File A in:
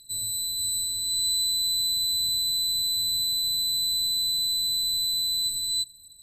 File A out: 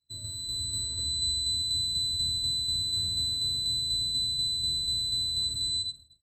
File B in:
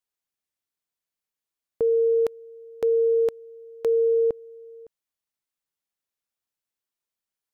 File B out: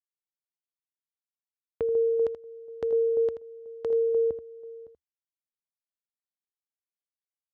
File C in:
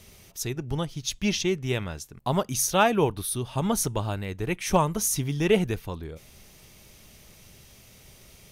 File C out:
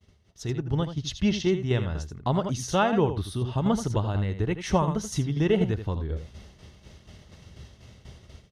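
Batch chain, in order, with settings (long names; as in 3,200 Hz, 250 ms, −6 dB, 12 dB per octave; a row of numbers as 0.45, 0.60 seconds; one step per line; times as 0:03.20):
automatic gain control gain up to 6 dB
low-pass filter 4,300 Hz 12 dB per octave
low-shelf EQ 330 Hz +4.5 dB
on a send: single-tap delay 81 ms −9.5 dB
on the sum: shaped tremolo saw down 4.1 Hz, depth 45%
notch filter 2,400 Hz, Q 5.7
in parallel at +1 dB: downward compressor, threshold −29 dBFS
on the sum: downward expander −36 dBFS
high-pass filter 41 Hz
parametric band 76 Hz +7 dB 0.52 octaves
loudness normalisation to −27 LKFS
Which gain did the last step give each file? −6.0, −13.0, −7.5 decibels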